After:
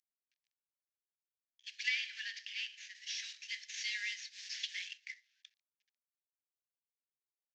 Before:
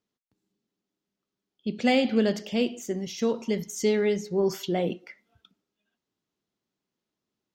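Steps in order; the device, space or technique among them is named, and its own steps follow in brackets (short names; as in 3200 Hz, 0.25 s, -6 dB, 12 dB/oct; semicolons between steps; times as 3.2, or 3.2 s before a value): early wireless headset (HPF 160 Hz 12 dB/oct; CVSD 32 kbps); Chebyshev high-pass 1700 Hz, order 6; 1.88–2.95 high shelf 5000 Hz -11 dB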